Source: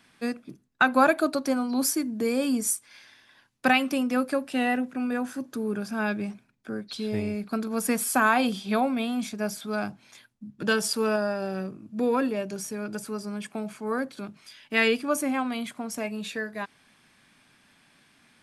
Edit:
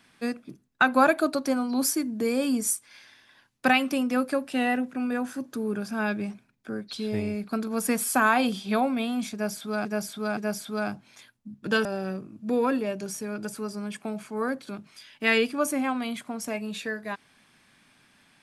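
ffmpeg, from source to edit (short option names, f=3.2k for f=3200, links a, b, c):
-filter_complex "[0:a]asplit=4[a][b][c][d];[a]atrim=end=9.852[e];[b]atrim=start=9.328:end=9.852[f];[c]atrim=start=9.328:end=10.812[g];[d]atrim=start=11.348[h];[e][f]acrossfade=d=0.004:c1=hsin:c2=hsin[i];[i][g]acrossfade=d=0.004:c1=hsin:c2=hsin[j];[j][h]acrossfade=d=0.004:c1=hsin:c2=hsin"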